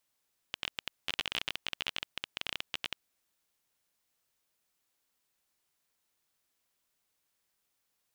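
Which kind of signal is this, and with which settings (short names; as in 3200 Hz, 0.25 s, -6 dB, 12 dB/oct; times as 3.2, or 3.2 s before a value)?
random clicks 21/s -15.5 dBFS 2.45 s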